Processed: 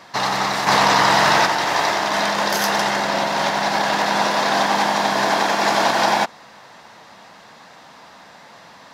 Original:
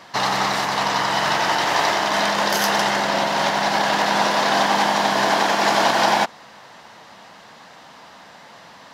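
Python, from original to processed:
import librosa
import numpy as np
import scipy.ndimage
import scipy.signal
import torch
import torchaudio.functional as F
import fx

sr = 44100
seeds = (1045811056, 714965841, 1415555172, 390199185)

y = fx.notch(x, sr, hz=3000.0, q=17.0)
y = fx.env_flatten(y, sr, amount_pct=100, at=(0.66, 1.45), fade=0.02)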